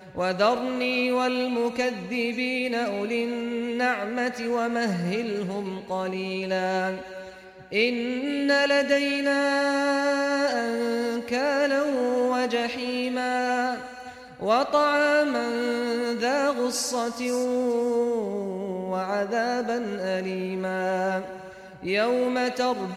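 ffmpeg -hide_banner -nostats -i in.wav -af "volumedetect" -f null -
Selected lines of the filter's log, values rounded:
mean_volume: -25.6 dB
max_volume: -9.7 dB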